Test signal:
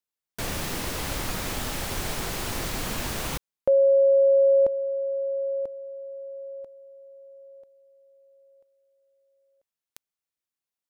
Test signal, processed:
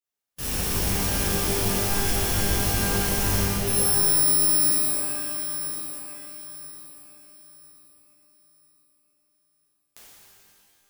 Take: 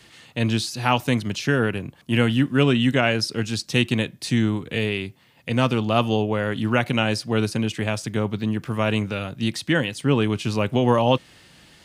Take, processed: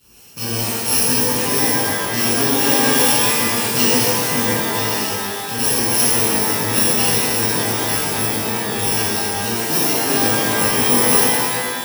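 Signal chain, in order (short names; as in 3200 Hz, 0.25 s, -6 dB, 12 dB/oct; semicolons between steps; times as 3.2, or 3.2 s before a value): FFT order left unsorted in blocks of 64 samples; harmonic-percussive split harmonic -10 dB; shimmer reverb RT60 2 s, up +12 st, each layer -2 dB, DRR -11 dB; gain -3.5 dB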